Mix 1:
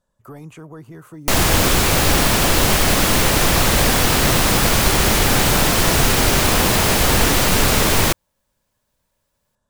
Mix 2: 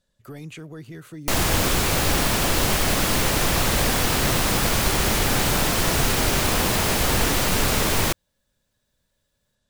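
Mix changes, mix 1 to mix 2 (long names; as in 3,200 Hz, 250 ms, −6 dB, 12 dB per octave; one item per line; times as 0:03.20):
speech: add graphic EQ with 10 bands 1,000 Hz −11 dB, 2,000 Hz +5 dB, 4,000 Hz +9 dB
background −5.5 dB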